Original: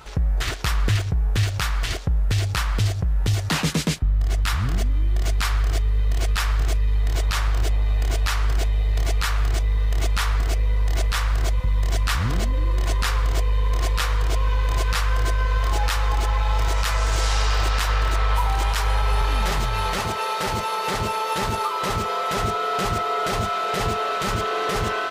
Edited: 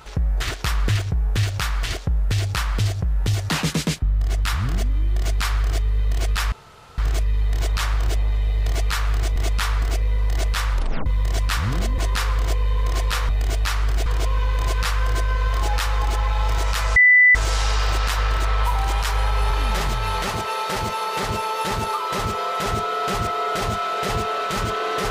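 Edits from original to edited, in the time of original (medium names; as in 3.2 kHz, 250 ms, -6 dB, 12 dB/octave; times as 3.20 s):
6.52 s: insert room tone 0.46 s
7.90–8.67 s: move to 14.16 s
9.67–9.94 s: delete
11.30 s: tape stop 0.34 s
12.56–12.85 s: delete
17.06 s: add tone 1.99 kHz -9 dBFS 0.39 s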